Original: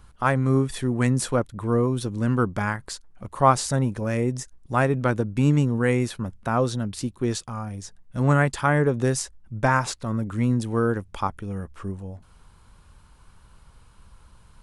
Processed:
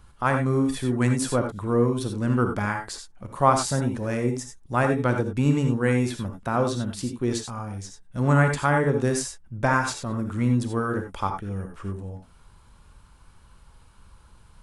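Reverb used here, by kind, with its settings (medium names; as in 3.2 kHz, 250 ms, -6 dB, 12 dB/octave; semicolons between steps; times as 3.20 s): gated-style reverb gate 110 ms rising, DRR 4.5 dB; trim -1.5 dB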